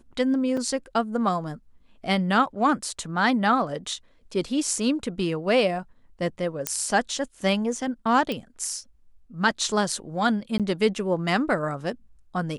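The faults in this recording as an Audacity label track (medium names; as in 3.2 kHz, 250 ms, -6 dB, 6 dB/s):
0.570000	0.570000	dropout 3.8 ms
6.670000	6.670000	pop -6 dBFS
8.320000	8.320000	pop -16 dBFS
10.580000	10.600000	dropout 17 ms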